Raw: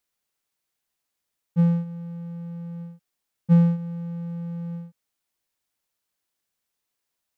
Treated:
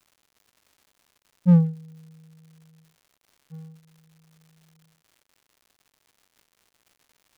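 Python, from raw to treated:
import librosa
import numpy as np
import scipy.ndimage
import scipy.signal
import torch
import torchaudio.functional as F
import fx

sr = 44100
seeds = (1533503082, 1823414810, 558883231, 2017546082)

y = fx.wiener(x, sr, points=41)
y = fx.doppler_pass(y, sr, speed_mps=23, closest_m=1.3, pass_at_s=1.54)
y = fx.dmg_crackle(y, sr, seeds[0], per_s=220.0, level_db=-53.0)
y = y * 10.0 ** (5.5 / 20.0)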